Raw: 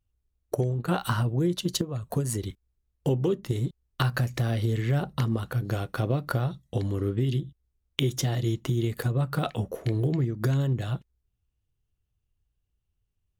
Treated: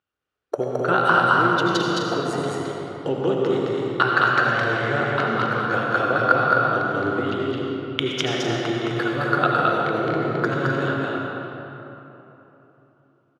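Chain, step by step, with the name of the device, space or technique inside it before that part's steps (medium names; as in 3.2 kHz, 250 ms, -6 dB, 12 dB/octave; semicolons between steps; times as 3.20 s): station announcement (band-pass 320–4000 Hz; peaking EQ 1.4 kHz +10.5 dB 0.53 oct; loudspeakers at several distances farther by 74 m -2 dB, 88 m -9 dB; reverberation RT60 3.4 s, pre-delay 68 ms, DRR -1 dB); trim +4.5 dB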